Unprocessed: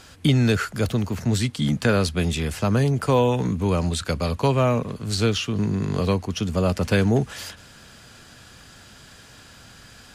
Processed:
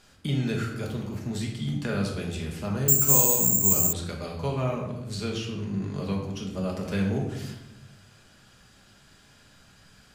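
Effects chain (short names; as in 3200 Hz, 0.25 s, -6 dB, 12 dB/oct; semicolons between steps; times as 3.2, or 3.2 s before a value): shoebox room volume 370 m³, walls mixed, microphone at 1.3 m; 2.88–3.93 careless resampling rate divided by 6×, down none, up zero stuff; gain -12.5 dB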